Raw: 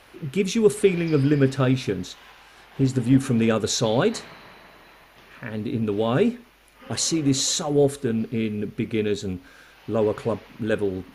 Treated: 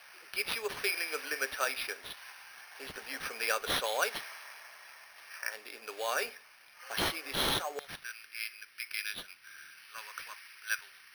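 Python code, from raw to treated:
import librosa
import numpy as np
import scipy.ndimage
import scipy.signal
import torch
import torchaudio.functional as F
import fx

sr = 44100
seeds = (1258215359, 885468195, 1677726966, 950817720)

y = fx.highpass(x, sr, hz=fx.steps((0.0, 590.0), (7.79, 1300.0)), slope=24)
y = fx.peak_eq(y, sr, hz=2000.0, db=12.5, octaves=1.2)
y = fx.notch(y, sr, hz=2000.0, q=12.0)
y = np.repeat(y[::6], 6)[:len(y)]
y = F.gain(torch.from_numpy(y), -8.5).numpy()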